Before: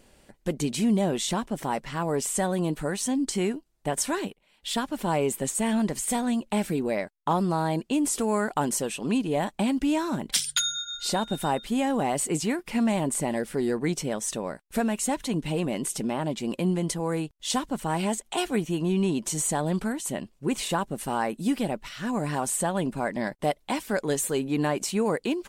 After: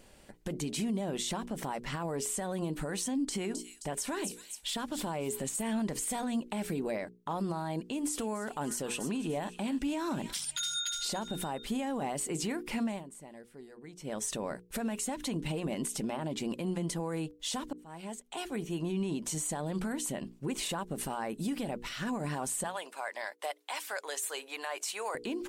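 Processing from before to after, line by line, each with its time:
3.11–5.69 s: feedback echo behind a high-pass 263 ms, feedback 31%, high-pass 5.2 kHz, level -4.5 dB
7.81–11.28 s: feedback echo behind a high-pass 291 ms, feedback 36%, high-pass 1.7 kHz, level -11 dB
12.72–14.29 s: dip -21.5 dB, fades 0.31 s
17.73–19.59 s: fade in
22.64–25.15 s: Bessel high-pass 880 Hz, order 4
whole clip: hum notches 60/120/180/240/300/360/420/480 Hz; compression 4:1, threshold -28 dBFS; peak limiter -25.5 dBFS

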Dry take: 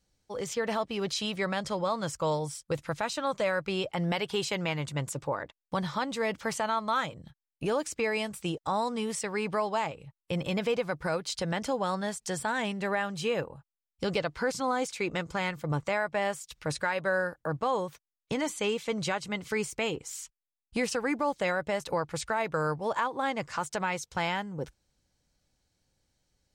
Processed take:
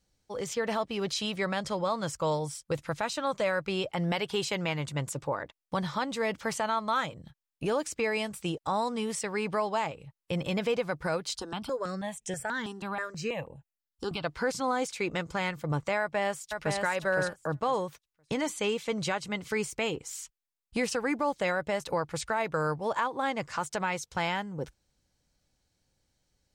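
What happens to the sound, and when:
11.37–14.24 s: stepped phaser 6.2 Hz 590–4500 Hz
16.00–16.81 s: echo throw 510 ms, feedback 15%, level -4 dB

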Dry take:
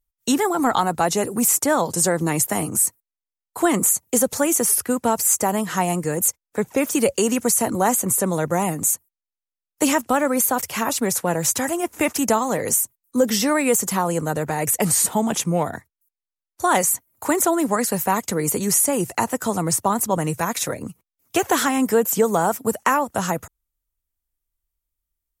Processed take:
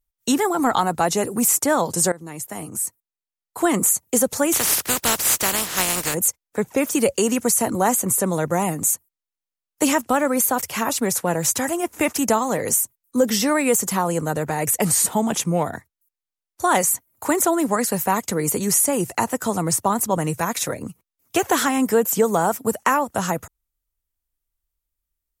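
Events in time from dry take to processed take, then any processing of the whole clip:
2.12–3.81 s: fade in, from -18.5 dB
4.52–6.13 s: spectral contrast reduction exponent 0.29

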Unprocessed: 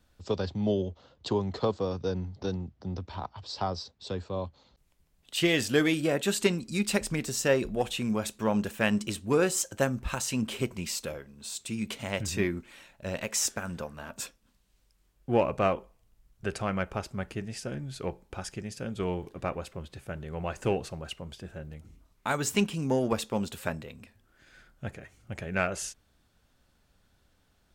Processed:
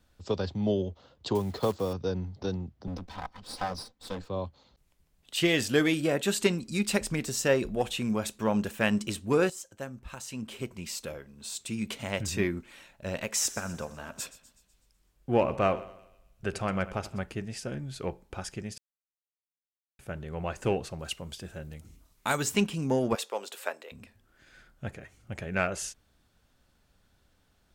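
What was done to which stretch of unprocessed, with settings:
1.35–1.94 s: block-companded coder 5-bit
2.87–4.28 s: comb filter that takes the minimum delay 3.9 ms
9.50–11.38 s: fade in quadratic, from -13 dB
13.31–17.20 s: two-band feedback delay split 2.9 kHz, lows 83 ms, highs 124 ms, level -16 dB
18.78–19.99 s: mute
20.99–22.43 s: treble shelf 3.8 kHz +10 dB
23.15–23.92 s: high-pass 420 Hz 24 dB/octave

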